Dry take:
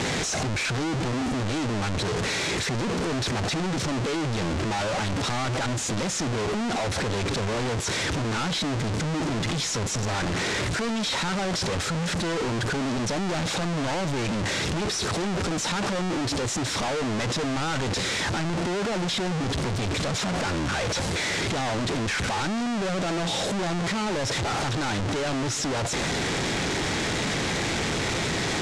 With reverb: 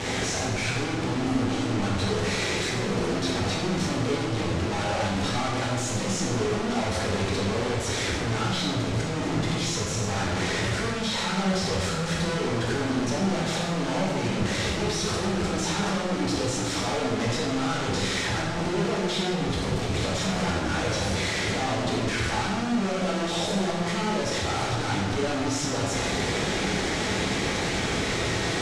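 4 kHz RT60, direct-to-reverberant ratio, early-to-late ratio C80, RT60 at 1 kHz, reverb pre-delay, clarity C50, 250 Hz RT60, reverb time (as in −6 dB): 1.1 s, −5.0 dB, 3.5 dB, 1.3 s, 5 ms, 0.5 dB, 1.6 s, 1.3 s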